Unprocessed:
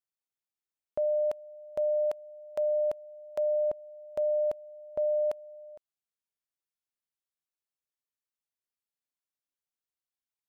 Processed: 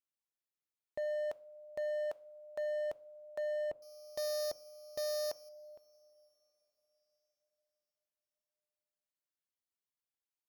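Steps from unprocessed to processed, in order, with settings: 3.82–5.49 sample sorter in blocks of 8 samples; two-slope reverb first 0.43 s, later 4.9 s, from -18 dB, DRR 17 dB; overloaded stage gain 28.5 dB; gain -5.5 dB

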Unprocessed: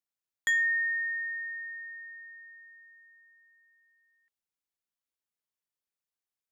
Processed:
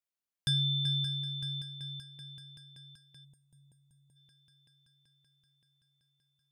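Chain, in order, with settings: multi-head echo 0.191 s, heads second and third, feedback 72%, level -11 dB; ring modulator 1700 Hz; spectral gain 3.25–4.16, 970–6300 Hz -17 dB

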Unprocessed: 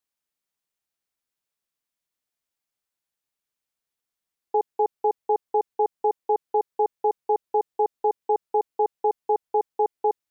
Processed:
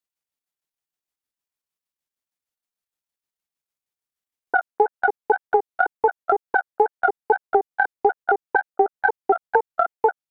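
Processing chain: trilling pitch shifter +9.5 st, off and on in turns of 77 ms; wow and flutter 120 cents; transient shaper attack +11 dB, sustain -4 dB; gain -3.5 dB

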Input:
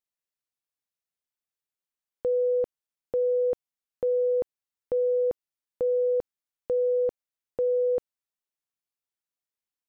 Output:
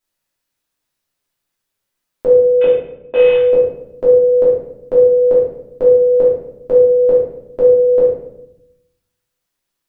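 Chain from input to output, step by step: 2.61–3.35 CVSD 16 kbps; shoebox room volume 210 m³, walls mixed, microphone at 2.9 m; gain +7.5 dB

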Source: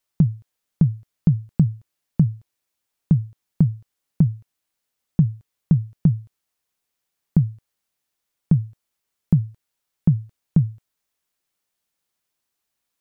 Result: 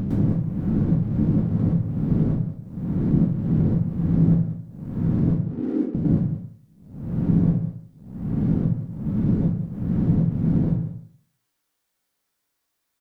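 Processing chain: spectral swells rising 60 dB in 0.93 s; 5.3–5.95 Chebyshev band-pass 240–520 Hz, order 4; dynamic EQ 370 Hz, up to +5 dB, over -33 dBFS, Q 1.9; sample leveller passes 1; compressor 4:1, threshold -22 dBFS, peak gain reduction 12.5 dB; echo 0.188 s -14.5 dB; plate-style reverb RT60 0.57 s, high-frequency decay 0.6×, pre-delay 0.1 s, DRR -6.5 dB; gain -3.5 dB

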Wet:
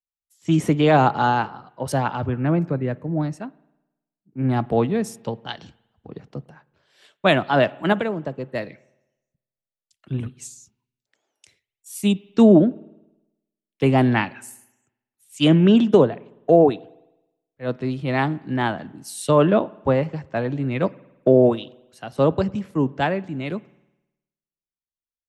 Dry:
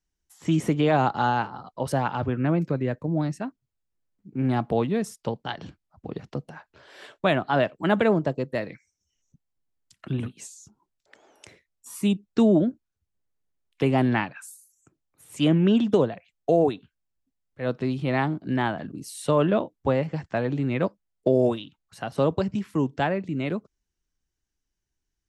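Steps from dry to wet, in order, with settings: 7.92–8.54 compressor 6:1, threshold -23 dBFS, peak gain reduction 7.5 dB; spring tank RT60 1.8 s, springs 52 ms, chirp 60 ms, DRR 20 dB; three-band expander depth 70%; gain +3 dB

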